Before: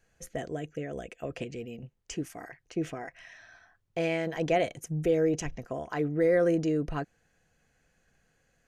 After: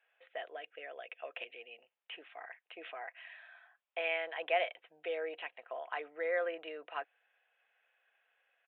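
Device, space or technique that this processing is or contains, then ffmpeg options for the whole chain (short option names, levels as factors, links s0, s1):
musical greeting card: -af "aresample=8000,aresample=44100,highpass=f=630:w=0.5412,highpass=f=630:w=1.3066,equalizer=f=2600:t=o:w=0.44:g=5,volume=0.75"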